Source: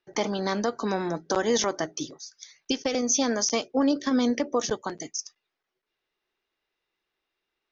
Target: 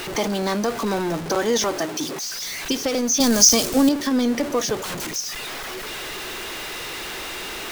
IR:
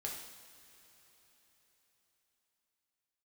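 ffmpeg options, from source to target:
-filter_complex "[0:a]aeval=exprs='val(0)+0.5*0.0501*sgn(val(0))':c=same,asettb=1/sr,asplit=3[s0][s1][s2];[s0]atrim=end=1.804[s3];[s1]atrim=start=1.8:end=2.33,asetpts=PTS-STARTPTS,afade=t=in:d=0.004:c=qsin,afade=t=out:st=0.526:d=0.004:c=qsin,highpass=160[s4];[s2]atrim=start=2.326[s5];[s3][s4]acrossfade=d=0.004:c1=hsin:c2=qsin[s6];[s6][s5]acrossfade=d=0.004:c1=qsin:c2=hsin,asettb=1/sr,asplit=3[s7][s8][s9];[s7]atrim=end=3.204[s10];[s8]atrim=start=3.2:end=3.89,asetpts=PTS-STARTPTS,afade=t=in:d=0.004:c=qsin,afade=t=out:st=0.686:d=0.004:c=qsin,bass=f=250:g=10,treble=f=4000:g=13[s11];[s9]atrim=start=3.886[s12];[s10][s11]acrossfade=d=0.004:c1=hsin:c2=qsin[s13];[s13][s12]acrossfade=d=0.004:c1=qsin:c2=hsin,asettb=1/sr,asplit=3[s14][s15][s16];[s14]atrim=end=4.764[s17];[s15]atrim=start=4.76:end=5.16,asetpts=PTS-STARTPTS,afade=t=in:d=0.004:c=qsin,afade=t=out:st=0.396:d=0.004:c=qsin,aeval=exprs='(mod(25.1*val(0)+1,2)-1)/25.1':c=same[s18];[s16]atrim=start=5.156[s19];[s17][s18]acrossfade=d=0.004:c1=hsin:c2=qsin[s20];[s20][s19]acrossfade=d=0.004:c1=qsin:c2=hsin,volume=1.12"

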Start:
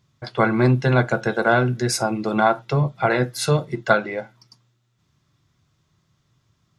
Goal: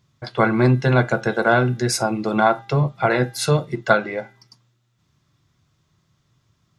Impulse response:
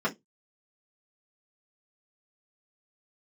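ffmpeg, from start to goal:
-af "bandreject=f=399.8:t=h:w=4,bandreject=f=799.6:t=h:w=4,bandreject=f=1199.4:t=h:w=4,bandreject=f=1599.2:t=h:w=4,bandreject=f=1999:t=h:w=4,bandreject=f=2398.8:t=h:w=4,bandreject=f=2798.6:t=h:w=4,bandreject=f=3198.4:t=h:w=4,bandreject=f=3598.2:t=h:w=4,bandreject=f=3998:t=h:w=4,volume=1.12"

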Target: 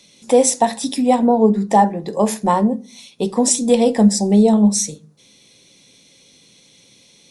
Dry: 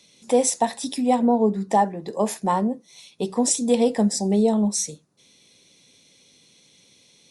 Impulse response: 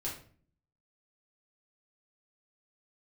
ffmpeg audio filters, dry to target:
-filter_complex "[0:a]asplit=2[s0][s1];[1:a]atrim=start_sample=2205,asetrate=66150,aresample=44100,lowshelf=f=410:g=7[s2];[s1][s2]afir=irnorm=-1:irlink=0,volume=0.224[s3];[s0][s3]amix=inputs=2:normalize=0,volume=1.68"

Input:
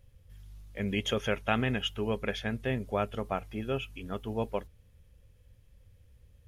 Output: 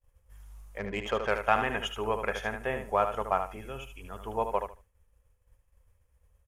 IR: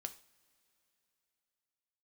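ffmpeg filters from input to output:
-filter_complex "[0:a]agate=range=0.0224:threshold=0.00316:ratio=3:detection=peak,equalizer=f=125:t=o:w=1:g=-11,equalizer=f=250:t=o:w=1:g=-9,equalizer=f=1000:t=o:w=1:g=9,equalizer=f=4000:t=o:w=1:g=-11,equalizer=f=8000:t=o:w=1:g=5,asettb=1/sr,asplit=3[s0][s1][s2];[s0]atrim=end=3.564[s3];[s1]atrim=start=3.56:end=4.22,asetpts=PTS-STARTPTS,afade=t=in:d=0.004:c=qsin,afade=t=out:st=0.656:d=0.004:c=qsin,acrossover=split=210|3000[s4][s5][s6];[s5]acompressor=threshold=0.00251:ratio=2[s7];[s4][s7][s6]amix=inputs=3:normalize=0[s8];[s2]atrim=start=4.216[s9];[s3][s8]acrossfade=d=0.004:c1=hsin:c2=qsin[s10];[s10][s9]acrossfade=d=0.004:c1=qsin:c2=hsin,asplit=2[s11][s12];[s12]asoftclip=type=hard:threshold=0.0944,volume=0.282[s13];[s11][s13]amix=inputs=2:normalize=0,asettb=1/sr,asplit=3[s14][s15][s16];[s14]atrim=end=0.784[s17];[s15]atrim=start=0.78:end=1.31,asetpts=PTS-STARTPTS,afade=t=in:d=0.004:c=qsin,afade=t=out:st=0.526:d=0.004:c=qsin,adynamicsmooth=sensitivity=3.5:basefreq=2200[s18];[s16]atrim=start=1.306[s19];[s17][s18]acrossfade=d=0.004:c1=hsin:c2=qsin[s20];[s20][s19]acrossfade=d=0.004:c1=qsin:c2=hsin,aecho=1:1:75|150|225:0.422|0.0801|0.0152"

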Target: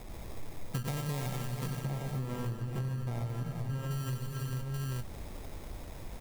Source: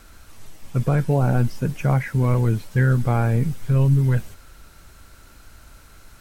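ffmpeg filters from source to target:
-filter_complex "[0:a]acrusher=samples=30:mix=1:aa=0.000001,acontrast=75,volume=2.66,asoftclip=hard,volume=0.376,asettb=1/sr,asplit=3[s0][s1][s2];[s0]atrim=end=1.764[s3];[s1]atrim=start=1.76:end=3.91,asetpts=PTS-STARTPTS,afade=t=in:d=0.004:c=qsin,afade=t=out:st=2.146:d=0.004:c=qsin,highshelf=f=2000:g=-11[s4];[s2]atrim=start=3.906[s5];[s3][s4]acrossfade=d=0.004:c1=hsin:c2=qsin[s6];[s6][s5]acrossfade=d=0.004:c1=qsin:c2=hsin,aecho=1:1:93|237|325|439|832:0.562|0.299|0.251|0.335|0.237,acompressor=threshold=0.0447:ratio=16,highshelf=f=7000:g=8,volume=0.531"

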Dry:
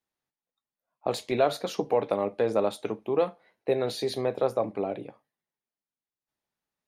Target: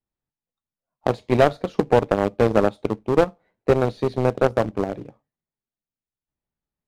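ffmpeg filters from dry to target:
-af "acrusher=bits=3:mode=log:mix=0:aa=0.000001,aemphasis=mode=reproduction:type=riaa,aeval=exprs='0.422*(cos(1*acos(clip(val(0)/0.422,-1,1)))-cos(1*PI/2))+0.0376*(cos(3*acos(clip(val(0)/0.422,-1,1)))-cos(3*PI/2))+0.0266*(cos(7*acos(clip(val(0)/0.422,-1,1)))-cos(7*PI/2))':c=same,volume=2.11"

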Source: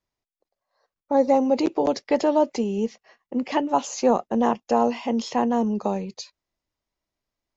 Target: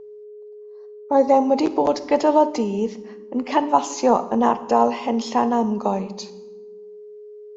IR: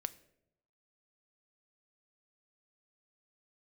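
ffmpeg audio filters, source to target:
-filter_complex "[0:a]aeval=exprs='val(0)+0.01*sin(2*PI*420*n/s)':c=same,equalizer=f=980:w=1.6:g=5[s0];[1:a]atrim=start_sample=2205,asetrate=25137,aresample=44100[s1];[s0][s1]afir=irnorm=-1:irlink=0"

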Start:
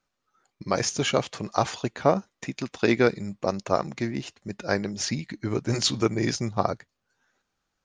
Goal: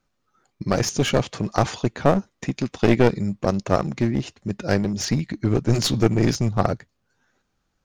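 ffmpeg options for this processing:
-af "lowshelf=f=370:g=9,aeval=exprs='clip(val(0),-1,0.0668)':c=same,volume=1.26"

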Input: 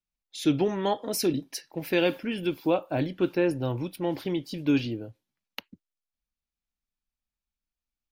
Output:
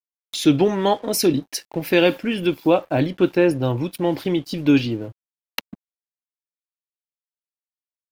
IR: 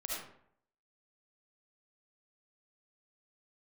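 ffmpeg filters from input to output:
-af "aeval=exprs='sgn(val(0))*max(abs(val(0))-0.00178,0)':c=same,acompressor=mode=upward:threshold=0.0316:ratio=2.5,volume=2.51"

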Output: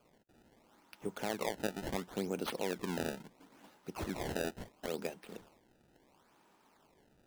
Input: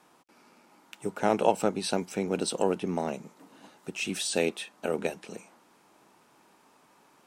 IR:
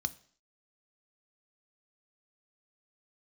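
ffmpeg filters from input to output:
-af "acrusher=samples=23:mix=1:aa=0.000001:lfo=1:lforange=36.8:lforate=0.73,alimiter=limit=0.126:level=0:latency=1:release=284,volume=0.473"

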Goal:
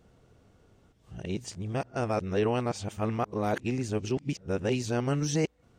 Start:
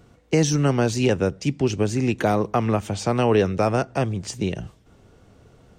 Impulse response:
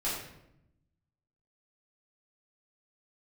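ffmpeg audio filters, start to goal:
-af "areverse,volume=0.376"

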